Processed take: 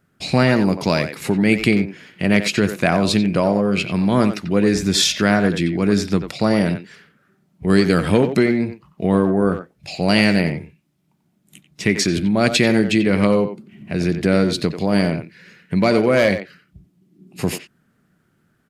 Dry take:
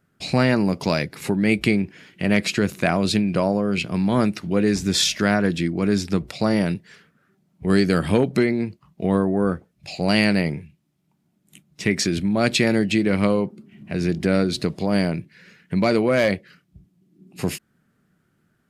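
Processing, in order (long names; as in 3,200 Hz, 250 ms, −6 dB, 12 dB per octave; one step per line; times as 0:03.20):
far-end echo of a speakerphone 90 ms, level −8 dB
level +3 dB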